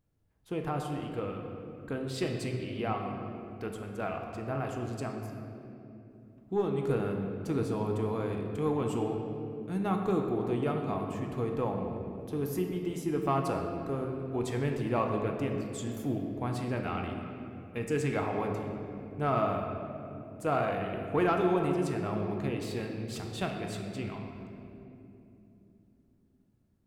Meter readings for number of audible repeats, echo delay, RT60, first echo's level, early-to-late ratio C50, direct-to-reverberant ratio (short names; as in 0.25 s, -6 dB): none, none, 3.0 s, none, 3.5 dB, 2.0 dB